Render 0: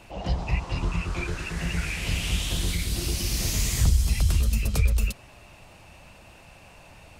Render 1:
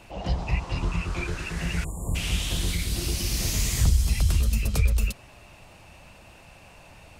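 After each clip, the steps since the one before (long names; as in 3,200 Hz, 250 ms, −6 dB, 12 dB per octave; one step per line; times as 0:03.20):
time-frequency box erased 0:01.84–0:02.15, 1,200–6,800 Hz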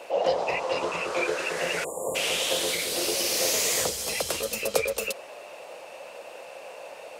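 high-pass with resonance 510 Hz, resonance Q 4.9
level +4.5 dB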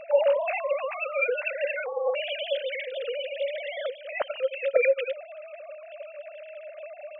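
three sine waves on the formant tracks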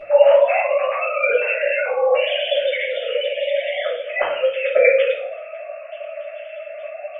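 rectangular room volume 79 cubic metres, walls mixed, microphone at 2.3 metres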